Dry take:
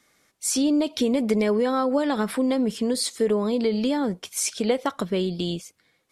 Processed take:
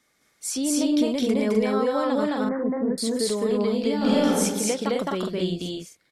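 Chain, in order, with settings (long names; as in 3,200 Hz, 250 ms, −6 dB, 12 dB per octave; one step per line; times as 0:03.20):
0:02.23–0:02.98: Butterworth low-pass 2,000 Hz 96 dB per octave
loudspeakers that aren't time-aligned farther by 73 metres 0 dB, 88 metres −3 dB
0:03.96–0:04.40: thrown reverb, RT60 1.1 s, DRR −6 dB
level −4.5 dB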